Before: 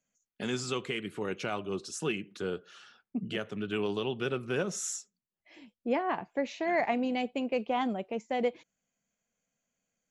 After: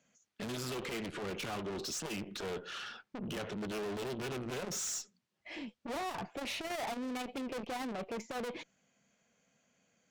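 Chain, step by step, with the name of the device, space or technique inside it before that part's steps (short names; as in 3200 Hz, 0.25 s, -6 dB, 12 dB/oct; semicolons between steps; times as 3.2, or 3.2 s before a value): valve radio (BPF 81–5600 Hz; tube stage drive 48 dB, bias 0.25; core saturation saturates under 240 Hz); gain +12.5 dB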